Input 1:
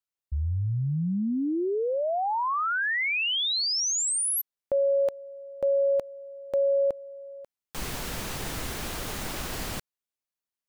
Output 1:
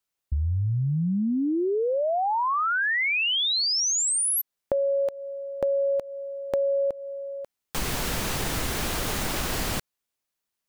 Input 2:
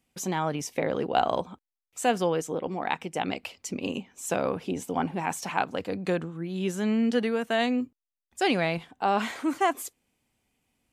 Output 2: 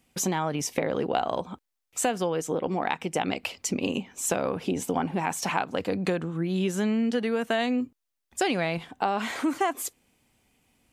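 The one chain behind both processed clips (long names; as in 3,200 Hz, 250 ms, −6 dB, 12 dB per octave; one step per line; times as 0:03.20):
downward compressor 5 to 1, threshold −31 dBFS
level +7.5 dB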